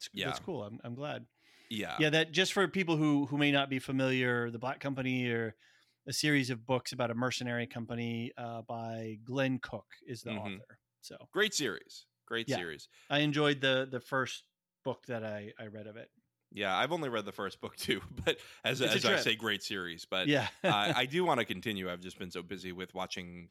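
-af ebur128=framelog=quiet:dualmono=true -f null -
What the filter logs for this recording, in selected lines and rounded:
Integrated loudness:
  I:         -30.3 LUFS
  Threshold: -40.9 LUFS
Loudness range:
  LRA:         7.1 LU
  Threshold: -50.7 LUFS
  LRA low:   -34.9 LUFS
  LRA high:  -27.8 LUFS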